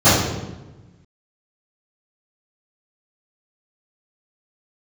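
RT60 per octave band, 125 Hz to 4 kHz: 1.6, 1.5, 1.2, 1.0, 0.90, 0.80 seconds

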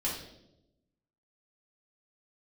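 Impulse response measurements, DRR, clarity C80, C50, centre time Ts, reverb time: −5.5 dB, 7.5 dB, 4.0 dB, 41 ms, 0.85 s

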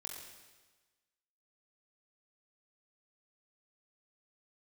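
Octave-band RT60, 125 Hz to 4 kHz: 1.3, 1.3, 1.3, 1.3, 1.3, 1.3 seconds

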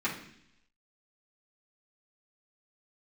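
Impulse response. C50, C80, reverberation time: 7.5 dB, 11.5 dB, 0.70 s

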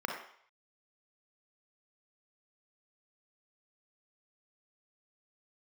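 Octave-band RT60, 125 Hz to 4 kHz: 0.35, 0.45, 0.55, 0.65, 0.65, 0.65 seconds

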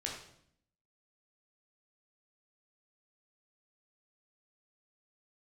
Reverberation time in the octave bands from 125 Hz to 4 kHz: 0.90, 0.95, 0.70, 0.65, 0.60, 0.60 seconds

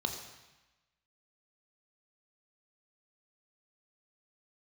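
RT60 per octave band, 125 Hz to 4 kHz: 1.1, 1.1, 0.95, 1.1, 1.2, 1.1 seconds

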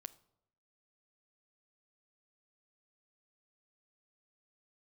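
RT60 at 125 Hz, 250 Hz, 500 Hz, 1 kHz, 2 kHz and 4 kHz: 0.85, 0.85, 0.80, 0.75, 0.55, 0.50 seconds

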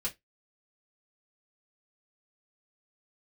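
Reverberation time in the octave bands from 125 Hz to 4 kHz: 0.20, 0.15, 0.15, 0.15, 0.15, 0.15 seconds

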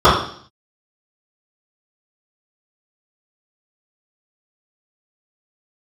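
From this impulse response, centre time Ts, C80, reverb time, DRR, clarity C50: 42 ms, 8.0 dB, 0.55 s, −17.0 dB, 3.5 dB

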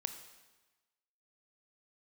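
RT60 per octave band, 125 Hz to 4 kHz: 1.2, 1.2, 1.1, 1.2, 1.2, 1.1 seconds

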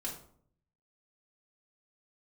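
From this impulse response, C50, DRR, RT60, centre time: 7.0 dB, −4.0 dB, 0.60 s, 27 ms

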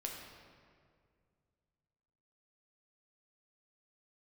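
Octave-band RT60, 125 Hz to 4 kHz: 3.1, 2.6, 2.3, 1.9, 1.7, 1.3 seconds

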